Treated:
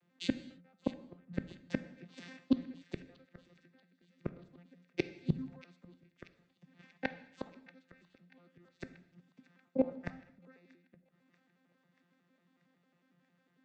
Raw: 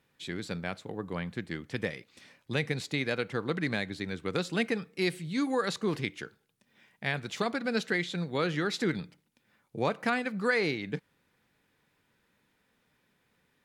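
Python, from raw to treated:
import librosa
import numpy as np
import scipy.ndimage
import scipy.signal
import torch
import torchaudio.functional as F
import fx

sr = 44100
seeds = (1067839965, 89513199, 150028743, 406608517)

p1 = fx.vocoder_arp(x, sr, chord='bare fifth', root=53, every_ms=91)
p2 = fx.level_steps(p1, sr, step_db=22)
p3 = p1 + (p2 * librosa.db_to_amplitude(-1.5))
p4 = fx.gate_flip(p3, sr, shuts_db=-29.0, range_db=-37)
p5 = p4 + fx.echo_wet_highpass(p4, sr, ms=635, feedback_pct=70, hz=1500.0, wet_db=-14, dry=0)
p6 = fx.rev_gated(p5, sr, seeds[0], gate_ms=320, shape='falling', drr_db=11.5)
p7 = fx.band_widen(p6, sr, depth_pct=40)
y = p7 * librosa.db_to_amplitude(9.5)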